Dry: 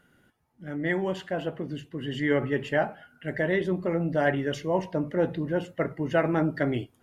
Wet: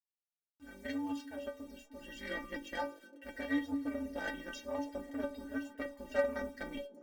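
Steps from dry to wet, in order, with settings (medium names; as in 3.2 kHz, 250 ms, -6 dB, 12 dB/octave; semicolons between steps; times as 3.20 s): ring modulator 98 Hz; peaking EQ 5.6 kHz +9.5 dB 1.3 oct; in parallel at -1 dB: compression 16:1, threshold -40 dBFS, peak gain reduction 21 dB; on the sum: spectral noise reduction 7 dB; Chebyshev shaper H 7 -23 dB, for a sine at -10 dBFS; bit crusher 9-bit; inharmonic resonator 280 Hz, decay 0.28 s, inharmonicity 0.008; on a send: repeats whose band climbs or falls 304 ms, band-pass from 270 Hz, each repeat 0.7 oct, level -11.5 dB; on the sum: trim +5.5 dB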